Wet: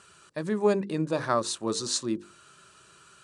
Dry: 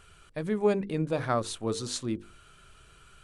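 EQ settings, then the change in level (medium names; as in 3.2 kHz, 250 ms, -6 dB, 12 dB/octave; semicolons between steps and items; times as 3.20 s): cabinet simulation 240–9100 Hz, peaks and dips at 260 Hz -7 dB, 460 Hz -8 dB, 730 Hz -9 dB, 1.4 kHz -5 dB, 2.2 kHz -10 dB, 3.2 kHz -8 dB; +7.5 dB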